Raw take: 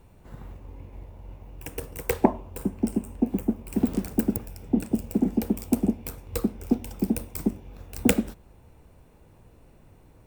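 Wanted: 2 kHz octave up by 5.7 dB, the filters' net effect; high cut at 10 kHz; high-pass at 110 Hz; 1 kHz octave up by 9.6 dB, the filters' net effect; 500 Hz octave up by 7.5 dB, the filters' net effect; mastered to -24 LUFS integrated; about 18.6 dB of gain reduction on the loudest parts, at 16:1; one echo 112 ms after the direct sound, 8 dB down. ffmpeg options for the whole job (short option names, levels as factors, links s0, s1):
-af "highpass=110,lowpass=10000,equalizer=f=500:t=o:g=7.5,equalizer=f=1000:t=o:g=8.5,equalizer=f=2000:t=o:g=4.5,acompressor=threshold=0.0447:ratio=16,aecho=1:1:112:0.398,volume=3.76"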